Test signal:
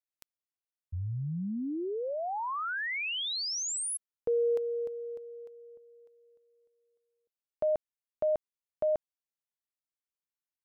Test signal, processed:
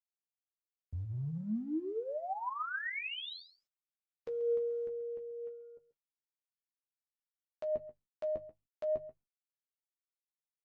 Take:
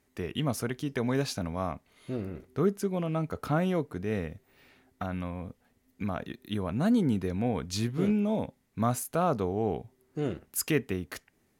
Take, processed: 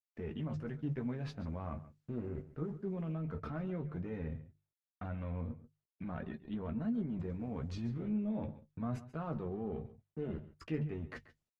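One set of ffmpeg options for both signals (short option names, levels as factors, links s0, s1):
-filter_complex "[0:a]lowpass=1600,agate=range=0.00126:threshold=0.002:ratio=16:release=26:detection=peak,equalizer=f=760:w=0.48:g=-8.5,bandreject=f=50:t=h:w=6,bandreject=f=100:t=h:w=6,bandreject=f=150:t=h:w=6,areverse,acompressor=threshold=0.00891:ratio=8:attack=0.86:release=55:knee=6:detection=peak,areverse,flanger=delay=4.4:depth=5.1:regen=54:speed=0.3:shape=sinusoidal,asplit=2[s0][s1];[s1]adelay=13,volume=0.447[s2];[s0][s2]amix=inputs=2:normalize=0,aecho=1:1:136:0.158,volume=2.99" -ar 48000 -c:a libopus -b:a 20k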